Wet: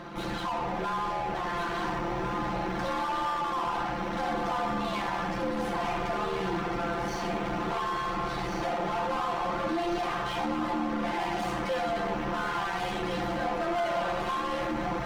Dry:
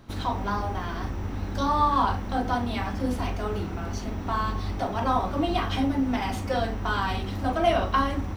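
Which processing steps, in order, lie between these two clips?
downward compressor, threshold −25 dBFS, peak gain reduction 9 dB
mid-hump overdrive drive 33 dB, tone 1,200 Hz, clips at −15 dBFS
feedback echo with a high-pass in the loop 778 ms, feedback 56%, high-pass 420 Hz, level −5 dB
time stretch by overlap-add 1.8×, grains 26 ms
level −6.5 dB

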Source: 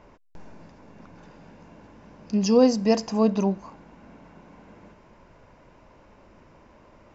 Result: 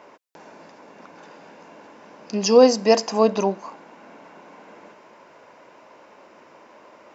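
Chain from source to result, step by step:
high-pass filter 380 Hz 12 dB per octave
level +7.5 dB

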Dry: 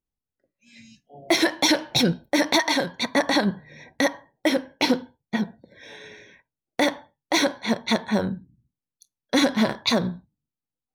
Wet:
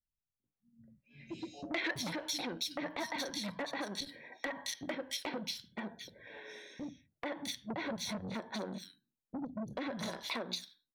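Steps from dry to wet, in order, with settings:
0:03.88–0:04.51: mid-hump overdrive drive 14 dB, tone 7,500 Hz, clips at −8 dBFS
0:07.70–0:08.34: low-shelf EQ 420 Hz +11 dB
three-band delay without the direct sound lows, mids, highs 440/660 ms, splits 230/3,100 Hz
downward compressor 12 to 1, threshold −28 dBFS, peak gain reduction 17.5 dB
gain into a clipping stage and back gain 21.5 dB
0:01.29–0:01.91: flat-topped bell 2,600 Hz +8.5 dB
saturating transformer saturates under 1,200 Hz
level −5 dB

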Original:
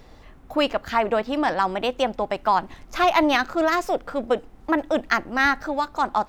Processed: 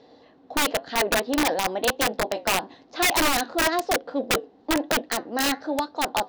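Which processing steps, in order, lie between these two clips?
loose part that buzzes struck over −28 dBFS, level −22 dBFS
0:01.92–0:02.47: double-tracking delay 19 ms −7 dB
flanger 1 Hz, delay 6.3 ms, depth 4.6 ms, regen −74%
loudspeaker in its box 210–5,300 Hz, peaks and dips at 280 Hz +8 dB, 480 Hz +9 dB, 730 Hz +5 dB, 1,300 Hz −7 dB, 2,300 Hz −7 dB, 4,100 Hz +7 dB
wrap-around overflow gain 15.5 dB

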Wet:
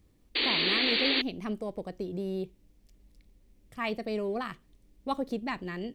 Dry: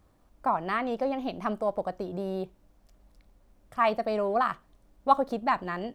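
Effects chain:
sound drawn into the spectrogram noise, 0:00.35–0:01.22, 240–4,700 Hz −26 dBFS
flat-topped bell 950 Hz −12 dB

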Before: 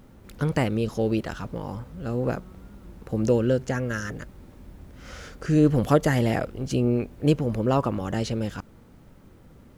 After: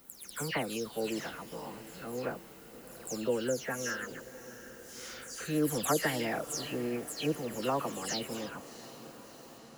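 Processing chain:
every frequency bin delayed by itself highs early, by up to 198 ms
RIAA equalisation recording
feedback delay with all-pass diffusion 684 ms, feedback 62%, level −15 dB
level −5.5 dB

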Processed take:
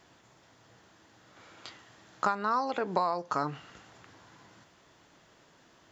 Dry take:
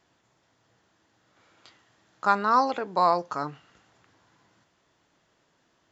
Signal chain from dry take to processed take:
downward compressor 20 to 1, threshold −32 dBFS, peak gain reduction 18 dB
level +7.5 dB

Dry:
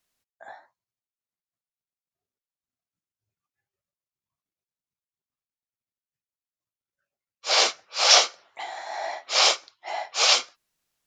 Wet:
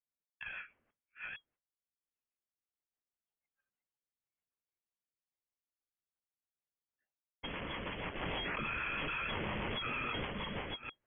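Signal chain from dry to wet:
delay that plays each chunk backwards 454 ms, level −4 dB
automatic gain control gain up to 14.5 dB
spectral tilt +5 dB per octave
downward expander −48 dBFS
tube saturation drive 24 dB, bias 0.7
voice inversion scrambler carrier 3,300 Hz
brickwall limiter −29.5 dBFS, peak gain reduction 9 dB
rotating-speaker cabinet horn 6.3 Hz
0:08.22–0:10.25: envelope flattener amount 100%

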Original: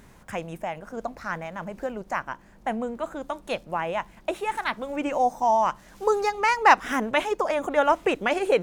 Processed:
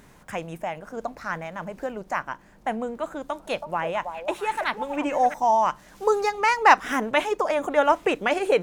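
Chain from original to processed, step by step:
low-shelf EQ 140 Hz −4.5 dB
0:03.07–0:05.34: echo through a band-pass that steps 325 ms, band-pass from 710 Hz, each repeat 1.4 octaves, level −5 dB
convolution reverb, pre-delay 7 ms, DRR 17.5 dB
level +1 dB

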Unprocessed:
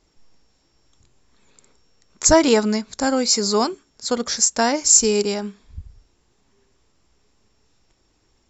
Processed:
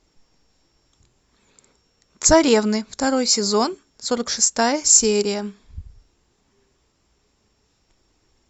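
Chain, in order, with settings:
Opus 64 kbit/s 48,000 Hz

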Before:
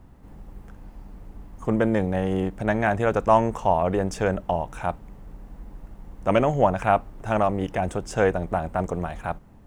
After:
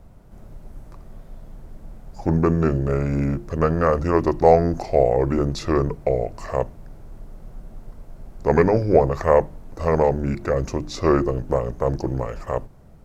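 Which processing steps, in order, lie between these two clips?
wrong playback speed 45 rpm record played at 33 rpm
mains-hum notches 50/100/150/200/250/300/350 Hz
level +3.5 dB

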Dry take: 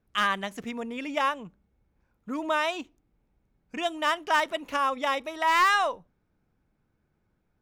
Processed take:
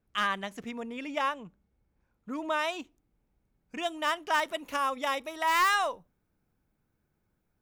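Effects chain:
high-shelf EQ 8,600 Hz −2 dB, from 0:02.59 +5 dB, from 0:04.44 +11.5 dB
level −3.5 dB

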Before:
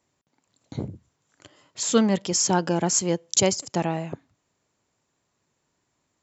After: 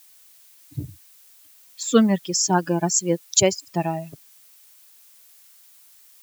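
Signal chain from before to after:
spectral dynamics exaggerated over time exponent 2
background noise blue −57 dBFS
level +5 dB

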